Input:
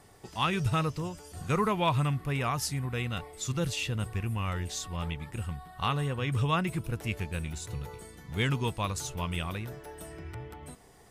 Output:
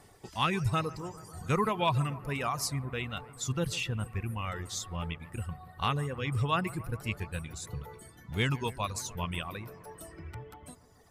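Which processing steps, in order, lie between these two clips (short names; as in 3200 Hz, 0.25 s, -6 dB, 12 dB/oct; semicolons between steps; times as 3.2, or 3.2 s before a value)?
reverb removal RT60 1.8 s; 6.25–7.53 notch 6300 Hz, Q 7.6; analogue delay 0.143 s, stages 2048, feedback 79%, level -19 dB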